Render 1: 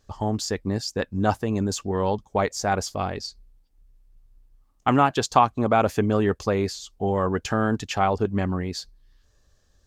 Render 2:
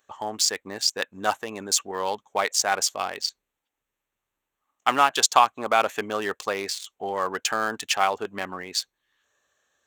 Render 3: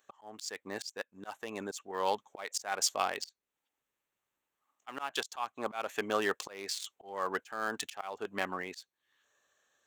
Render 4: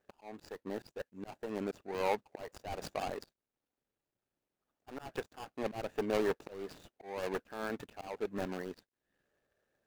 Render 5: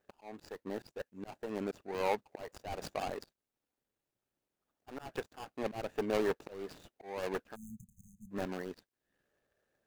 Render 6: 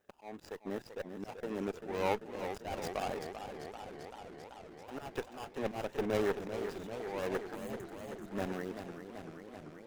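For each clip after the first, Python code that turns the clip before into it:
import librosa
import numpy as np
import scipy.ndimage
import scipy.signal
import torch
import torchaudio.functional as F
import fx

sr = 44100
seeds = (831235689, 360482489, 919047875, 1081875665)

y1 = fx.wiener(x, sr, points=9)
y1 = fx.highpass(y1, sr, hz=580.0, slope=6)
y1 = fx.tilt_eq(y1, sr, slope=3.5)
y1 = F.gain(torch.from_numpy(y1), 2.5).numpy()
y2 = fx.highpass(y1, sr, hz=140.0, slope=6)
y2 = fx.auto_swell(y2, sr, attack_ms=384.0)
y2 = F.gain(torch.from_numpy(y2), -2.5).numpy()
y3 = scipy.signal.medfilt(y2, 41)
y3 = F.gain(torch.from_numpy(y3), 4.5).numpy()
y4 = fx.spec_erase(y3, sr, start_s=7.55, length_s=0.76, low_hz=230.0, high_hz=6200.0)
y5 = fx.diode_clip(y4, sr, knee_db=-31.5)
y5 = fx.notch(y5, sr, hz=4400.0, q=12.0)
y5 = fx.echo_warbled(y5, sr, ms=388, feedback_pct=77, rate_hz=2.8, cents=130, wet_db=-9.0)
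y5 = F.gain(torch.from_numpy(y5), 2.0).numpy()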